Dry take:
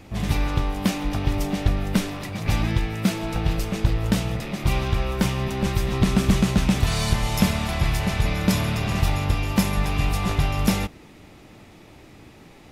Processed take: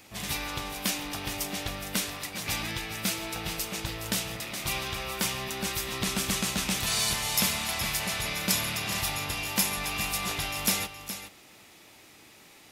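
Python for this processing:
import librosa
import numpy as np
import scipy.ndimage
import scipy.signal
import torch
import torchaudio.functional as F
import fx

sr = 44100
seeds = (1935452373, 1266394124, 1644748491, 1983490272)

p1 = fx.tilt_eq(x, sr, slope=3.5)
p2 = p1 + fx.echo_single(p1, sr, ms=418, db=-11.0, dry=0)
y = p2 * 10.0 ** (-5.5 / 20.0)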